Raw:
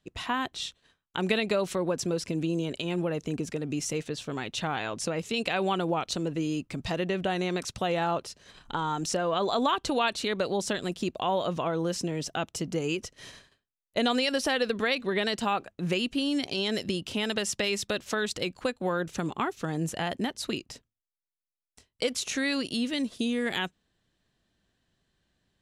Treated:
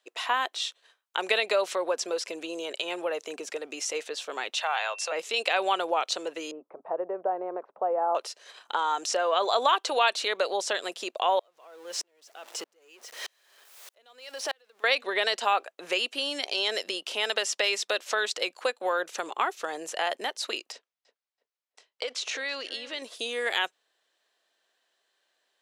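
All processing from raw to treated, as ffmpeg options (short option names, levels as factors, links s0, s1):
-filter_complex "[0:a]asettb=1/sr,asplit=3[s0][s1][s2];[s0]atrim=end=4.544[s3];[s1]atrim=start=4.54:end=5.12,asetpts=PTS-STARTPTS,afade=t=in:d=0.004:c=qsin,afade=t=out:st=0.576:d=0.004:c=qsin,highpass=f=570:w=0.5412,highpass=f=570:w=1.3066,aeval=exprs='val(0)+0.00562*sin(2*PI*2700*n/s)':c=same[s4];[s2]atrim=start=5.116[s5];[s3][s4]acrossfade=d=0.004:c1=hsin:c2=qsin[s6];[s6][s5]acrossfade=d=0.004:c1=qsin:c2=hsin,asettb=1/sr,asplit=3[s7][s8][s9];[s7]atrim=end=6.514[s10];[s8]atrim=start=6.51:end=8.15,asetpts=PTS-STARTPTS,afade=t=in:d=0.004:c=qsin,afade=t=out:st=1.636:d=0.004:c=qsin,lowpass=f=1000:w=0.5412,lowpass=f=1000:w=1.3066,bandreject=f=280:w=6.5[s11];[s9]atrim=start=8.146[s12];[s10][s11]acrossfade=d=0.004:c1=hsin:c2=qsin[s13];[s13][s12]acrossfade=d=0.004:c1=qsin:c2=hsin,asettb=1/sr,asplit=3[s14][s15][s16];[s14]atrim=end=11.394[s17];[s15]atrim=start=11.39:end=14.84,asetpts=PTS-STARTPTS,afade=t=in:d=0.004:c=qsin,afade=t=out:st=3.446:d=0.004:c=qsin,aeval=exprs='val(0)+0.5*0.0188*sgn(val(0))':c=same,acompressor=threshold=0.0447:ratio=3:attack=3.2:release=140:knee=1:detection=peak,aeval=exprs='val(0)*pow(10,-40*if(lt(mod(-1.6*n/s,1),2*abs(-1.6)/1000),1-mod(-1.6*n/s,1)/(2*abs(-1.6)/1000),(mod(-1.6*n/s,1)-2*abs(-1.6)/1000)/(1-2*abs(-1.6)/1000))/20)':c=same[s18];[s16]atrim=start=14.836[s19];[s17][s18]acrossfade=d=0.004:c1=hsin:c2=qsin[s20];[s20][s19]acrossfade=d=0.004:c1=qsin:c2=hsin,asettb=1/sr,asplit=3[s21][s22][s23];[s21]atrim=end=20.724[s24];[s22]atrim=start=20.72:end=23.02,asetpts=PTS-STARTPTS,afade=t=in:d=0.004:c=qsin,afade=t=out:st=2.296:d=0.004:c=qsin,lowpass=5200,acompressor=threshold=0.0282:ratio=3:attack=3.2:release=140:knee=1:detection=peak,asplit=2[s25][s26];[s26]adelay=329,lowpass=f=1700:p=1,volume=0.211,asplit=2[s27][s28];[s28]adelay=329,lowpass=f=1700:p=1,volume=0.31,asplit=2[s29][s30];[s30]adelay=329,lowpass=f=1700:p=1,volume=0.31[s31];[s25][s27][s29][s31]amix=inputs=4:normalize=0,atrim=end_sample=101430[s32];[s23]atrim=start=23.016[s33];[s24][s32]acrossfade=d=0.004:c1=hsin:c2=qsin[s34];[s34][s33]acrossfade=d=0.004:c1=qsin:c2=hsin,highpass=f=480:w=0.5412,highpass=f=480:w=1.3066,acrossover=split=8000[s35][s36];[s36]acompressor=threshold=0.00251:ratio=4:attack=1:release=60[s37];[s35][s37]amix=inputs=2:normalize=0,volume=1.58"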